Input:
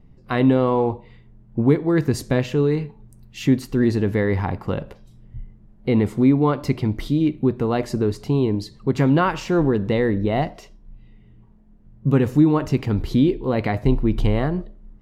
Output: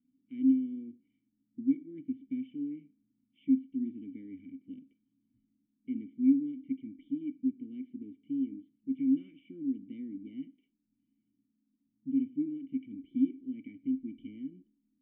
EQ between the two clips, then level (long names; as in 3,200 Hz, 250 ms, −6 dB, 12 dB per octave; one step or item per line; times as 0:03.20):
formant resonators in series i
formant filter i
−6.0 dB